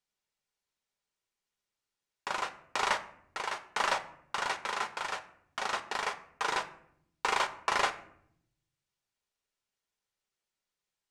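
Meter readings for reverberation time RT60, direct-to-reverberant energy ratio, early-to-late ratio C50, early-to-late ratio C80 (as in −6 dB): 0.70 s, 7.0 dB, 14.5 dB, 17.5 dB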